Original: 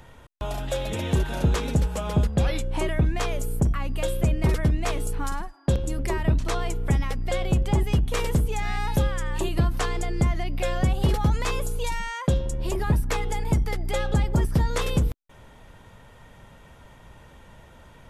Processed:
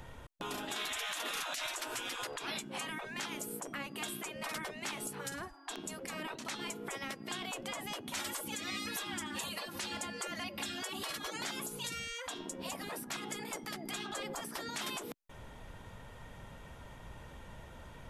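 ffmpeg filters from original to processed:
-filter_complex "[0:a]asettb=1/sr,asplit=3[s0][s1][s2];[s0]atrim=end=0.764[s3];[s1]atrim=start=0.76:end=2.39,asetpts=PTS-STARTPTS,afade=t=in:d=0.004:c=qsin,afade=t=out:st=1.626:d=0.004:c=qsin,acontrast=84[s4];[s2]atrim=start=2.386[s5];[s3][s4]acrossfade=d=0.004:c1=hsin:c2=qsin[s6];[s6][s5]acrossfade=d=0.004:c1=qsin:c2=hsin,asettb=1/sr,asplit=3[s7][s8][s9];[s7]atrim=end=8.154[s10];[s8]atrim=start=8.15:end=11.44,asetpts=PTS-STARTPTS,afade=t=in:d=0.004:c=qsin,afade=t=out:st=3.286:d=0.004:c=qsin,aecho=1:1:3.6:0.99,atrim=end_sample=145089[s11];[s9]atrim=start=11.436[s12];[s10][s11]acrossfade=d=0.004:c1=hsin:c2=qsin[s13];[s13][s12]acrossfade=d=0.004:c1=qsin:c2=hsin,afftfilt=real='re*lt(hypot(re,im),0.0891)':imag='im*lt(hypot(re,im),0.0891)':win_size=1024:overlap=0.75,alimiter=level_in=1.26:limit=0.0631:level=0:latency=1:release=121,volume=0.794,volume=0.841"

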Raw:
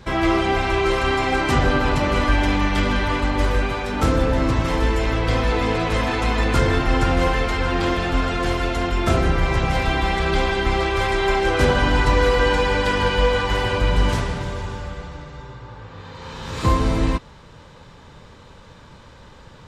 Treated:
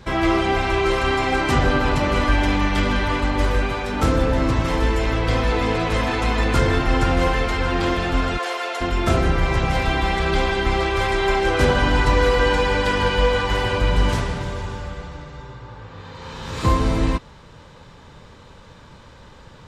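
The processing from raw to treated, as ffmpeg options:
-filter_complex "[0:a]asplit=3[s0][s1][s2];[s0]afade=t=out:st=8.37:d=0.02[s3];[s1]highpass=f=480:w=0.5412,highpass=f=480:w=1.3066,afade=t=in:st=8.37:d=0.02,afade=t=out:st=8.8:d=0.02[s4];[s2]afade=t=in:st=8.8:d=0.02[s5];[s3][s4][s5]amix=inputs=3:normalize=0"

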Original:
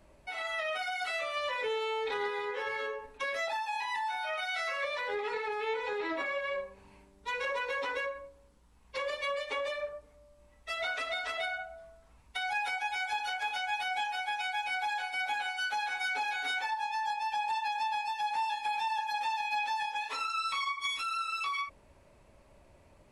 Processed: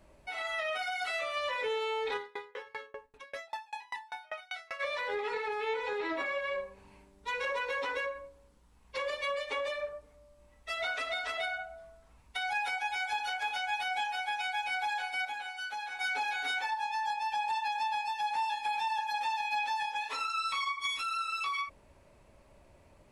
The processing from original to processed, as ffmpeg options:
-filter_complex "[0:a]asplit=3[s0][s1][s2];[s0]afade=t=out:st=2.16:d=0.02[s3];[s1]aeval=exprs='val(0)*pow(10,-31*if(lt(mod(5.1*n/s,1),2*abs(5.1)/1000),1-mod(5.1*n/s,1)/(2*abs(5.1)/1000),(mod(5.1*n/s,1)-2*abs(5.1)/1000)/(1-2*abs(5.1)/1000))/20)':c=same,afade=t=in:st=2.16:d=0.02,afade=t=out:st=4.79:d=0.02[s4];[s2]afade=t=in:st=4.79:d=0.02[s5];[s3][s4][s5]amix=inputs=3:normalize=0,asplit=3[s6][s7][s8];[s6]atrim=end=15.252[s9];[s7]atrim=start=15.248:end=15.992,asetpts=PTS-STARTPTS,volume=0.531[s10];[s8]atrim=start=15.988[s11];[s9][s10]acrossfade=d=0.004:c1=hsin:c2=hsin[s12];[s12][s11]acrossfade=d=0.004:c1=hsin:c2=hsin"

